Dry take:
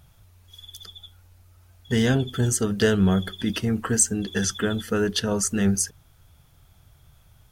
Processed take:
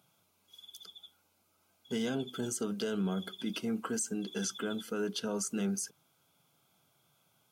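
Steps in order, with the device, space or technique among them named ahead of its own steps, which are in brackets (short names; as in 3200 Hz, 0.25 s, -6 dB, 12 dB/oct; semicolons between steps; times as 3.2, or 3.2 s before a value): PA system with an anti-feedback notch (HPF 180 Hz 24 dB/oct; Butterworth band-stop 1800 Hz, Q 4.8; limiter -17 dBFS, peak gain reduction 10.5 dB); gain -8 dB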